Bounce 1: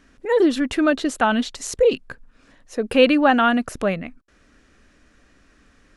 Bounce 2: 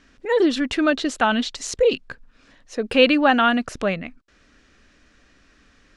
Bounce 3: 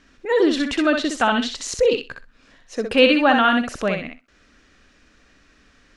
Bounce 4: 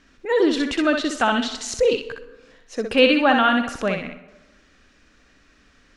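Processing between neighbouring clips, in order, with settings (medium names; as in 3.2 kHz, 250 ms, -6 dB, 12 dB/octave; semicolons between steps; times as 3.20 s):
low-pass 4.8 kHz 12 dB/octave; treble shelf 3.2 kHz +11 dB; trim -1.5 dB
thinning echo 63 ms, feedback 17%, high-pass 310 Hz, level -4.5 dB
plate-style reverb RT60 1.1 s, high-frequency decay 0.5×, pre-delay 105 ms, DRR 16 dB; trim -1 dB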